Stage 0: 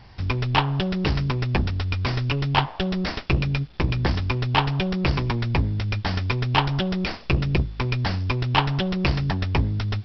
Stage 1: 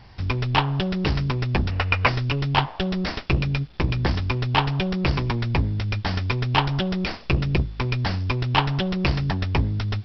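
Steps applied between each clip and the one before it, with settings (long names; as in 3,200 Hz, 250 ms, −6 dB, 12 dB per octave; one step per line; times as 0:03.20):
gain on a spectral selection 0:01.71–0:02.08, 440–3,000 Hz +11 dB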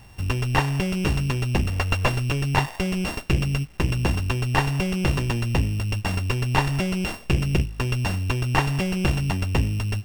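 samples sorted by size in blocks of 16 samples
slew-rate limiting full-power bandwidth 290 Hz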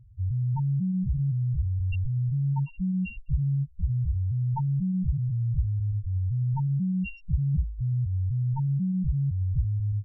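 spectral peaks only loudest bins 2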